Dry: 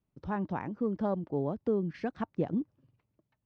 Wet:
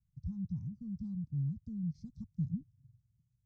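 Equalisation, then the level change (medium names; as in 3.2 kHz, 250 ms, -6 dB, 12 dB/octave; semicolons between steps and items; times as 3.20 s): inverse Chebyshev band-stop 350–3000 Hz, stop band 50 dB; distance through air 190 m; treble shelf 3 kHz +8.5 dB; +7.0 dB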